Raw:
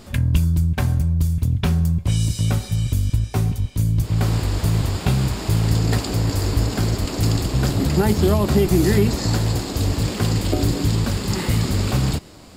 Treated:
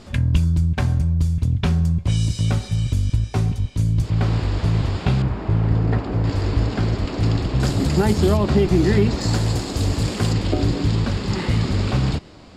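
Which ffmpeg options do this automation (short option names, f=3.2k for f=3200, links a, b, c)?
-af "asetnsamples=n=441:p=0,asendcmd='4.1 lowpass f 4000;5.22 lowpass f 1700;6.24 lowpass f 3500;7.6 lowpass f 9000;8.37 lowpass f 4600;9.21 lowpass f 9400;10.33 lowpass f 4600',lowpass=6.8k"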